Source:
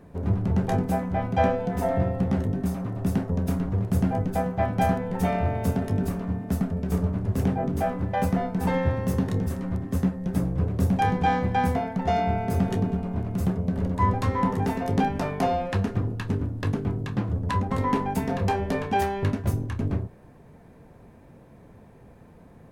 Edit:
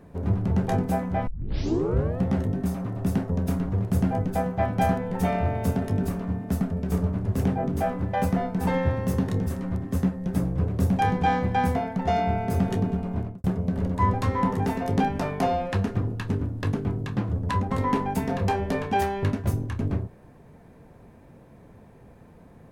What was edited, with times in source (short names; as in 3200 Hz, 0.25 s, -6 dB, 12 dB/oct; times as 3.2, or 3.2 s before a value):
1.27 tape start 0.94 s
13.19–13.44 studio fade out